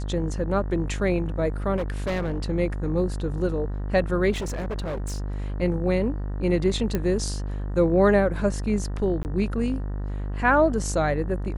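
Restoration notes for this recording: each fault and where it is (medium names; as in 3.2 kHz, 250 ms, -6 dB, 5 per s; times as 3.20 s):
buzz 50 Hz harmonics 38 -29 dBFS
1.76–2.40 s: clipped -22.5 dBFS
4.31–5.32 s: clipped -26 dBFS
6.95 s: pop -12 dBFS
9.23–9.25 s: dropout 19 ms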